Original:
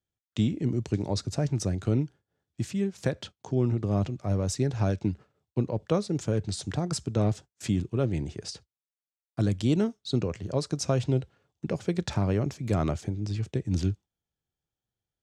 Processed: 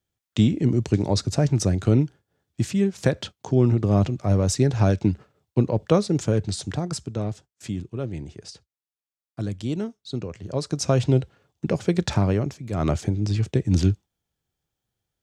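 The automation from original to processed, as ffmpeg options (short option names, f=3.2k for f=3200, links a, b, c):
-af "volume=28.5dB,afade=t=out:st=6.06:d=1.19:silence=0.316228,afade=t=in:st=10.33:d=0.71:silence=0.334965,afade=t=out:st=12.15:d=0.56:silence=0.281838,afade=t=in:st=12.71:d=0.23:silence=0.251189"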